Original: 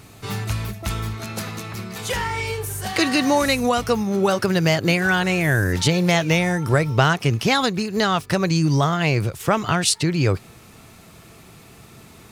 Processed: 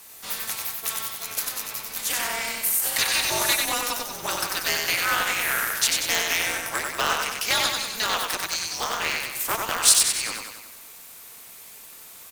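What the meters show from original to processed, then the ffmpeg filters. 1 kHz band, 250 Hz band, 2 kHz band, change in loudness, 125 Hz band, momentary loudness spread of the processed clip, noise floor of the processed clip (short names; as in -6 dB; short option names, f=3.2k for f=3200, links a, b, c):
-4.5 dB, -20.5 dB, -2.0 dB, -2.5 dB, -26.0 dB, 21 LU, -45 dBFS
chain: -filter_complex "[0:a]afreqshift=-100,lowshelf=f=340:g=-9,acrossover=split=530|2800[a][b][c];[a]acompressor=threshold=-39dB:ratio=6[d];[d][b][c]amix=inputs=3:normalize=0,aemphasis=mode=production:type=bsi,asplit=2[e][f];[f]aecho=0:1:94|188|282|376|470|564|658:0.668|0.361|0.195|0.105|0.0568|0.0307|0.0166[g];[e][g]amix=inputs=2:normalize=0,aeval=exprs='val(0)*sgn(sin(2*PI*120*n/s))':c=same,volume=-4.5dB"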